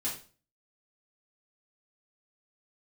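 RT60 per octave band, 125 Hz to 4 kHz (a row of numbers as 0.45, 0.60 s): 0.50, 0.45, 0.40, 0.35, 0.35, 0.35 s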